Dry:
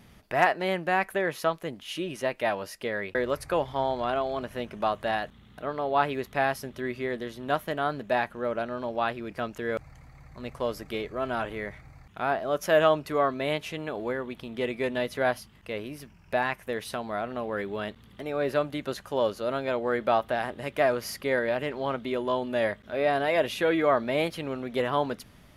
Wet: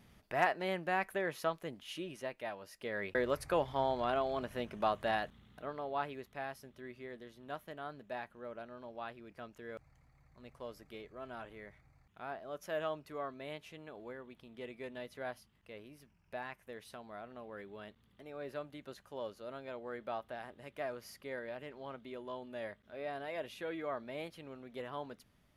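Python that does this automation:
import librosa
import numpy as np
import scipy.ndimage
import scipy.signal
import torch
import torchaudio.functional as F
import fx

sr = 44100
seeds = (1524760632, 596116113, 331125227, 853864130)

y = fx.gain(x, sr, db=fx.line((1.86, -8.5), (2.59, -16.0), (3.05, -5.5), (5.21, -5.5), (6.37, -16.5)))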